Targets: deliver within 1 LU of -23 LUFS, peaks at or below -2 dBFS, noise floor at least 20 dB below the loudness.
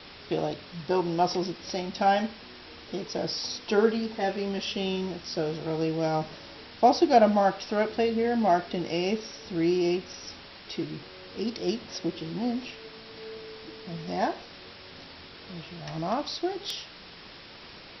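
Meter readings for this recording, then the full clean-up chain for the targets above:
noise floor -47 dBFS; noise floor target -48 dBFS; loudness -28.0 LUFS; peak -8.0 dBFS; loudness target -23.0 LUFS
-> denoiser 6 dB, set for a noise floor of -47 dBFS; gain +5 dB

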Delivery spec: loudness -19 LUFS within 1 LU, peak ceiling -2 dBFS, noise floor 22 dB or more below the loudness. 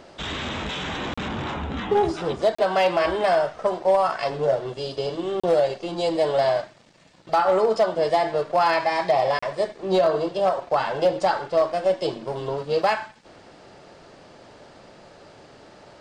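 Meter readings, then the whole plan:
clipped 0.4%; flat tops at -12.5 dBFS; dropouts 4; longest dropout 35 ms; loudness -23.0 LUFS; peak -12.5 dBFS; loudness target -19.0 LUFS
-> clip repair -12.5 dBFS; interpolate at 1.14/2.55/5.4/9.39, 35 ms; gain +4 dB

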